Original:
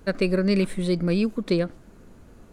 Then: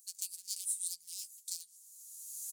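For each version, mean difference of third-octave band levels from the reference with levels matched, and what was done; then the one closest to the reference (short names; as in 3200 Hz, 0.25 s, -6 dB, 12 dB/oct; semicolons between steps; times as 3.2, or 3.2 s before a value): 22.5 dB: one-sided fold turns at -19.5 dBFS; recorder AGC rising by 25 dB/s; inverse Chebyshev high-pass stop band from 1300 Hz, stop band 80 dB; doubler 12 ms -7 dB; gain +9.5 dB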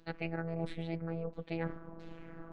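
9.5 dB: reverse; compressor 12:1, threshold -36 dBFS, peak gain reduction 19 dB; reverse; AM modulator 270 Hz, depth 95%; LFO low-pass saw down 1.5 Hz 830–4200 Hz; robotiser 165 Hz; gain +6.5 dB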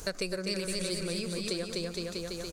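13.5 dB: fifteen-band EQ 100 Hz -4 dB, 250 Hz -11 dB, 6300 Hz +7 dB; bouncing-ball echo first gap 0.25 s, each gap 0.85×, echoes 5; compressor 4:1, threshold -41 dBFS, peak gain reduction 18.5 dB; tone controls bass -1 dB, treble +13 dB; gain +6 dB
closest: second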